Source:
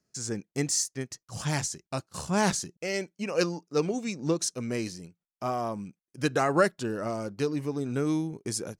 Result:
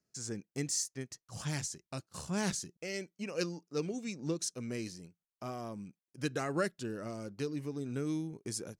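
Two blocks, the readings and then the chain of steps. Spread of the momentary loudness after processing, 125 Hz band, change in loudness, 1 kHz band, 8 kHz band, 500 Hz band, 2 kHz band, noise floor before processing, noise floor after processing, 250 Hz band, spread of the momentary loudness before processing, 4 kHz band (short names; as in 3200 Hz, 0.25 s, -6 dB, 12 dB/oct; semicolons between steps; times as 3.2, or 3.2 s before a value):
10 LU, -6.5 dB, -8.0 dB, -12.5 dB, -6.5 dB, -9.5 dB, -9.0 dB, under -85 dBFS, under -85 dBFS, -7.5 dB, 10 LU, -6.5 dB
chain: dynamic EQ 870 Hz, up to -8 dB, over -42 dBFS, Q 1; gain -6.5 dB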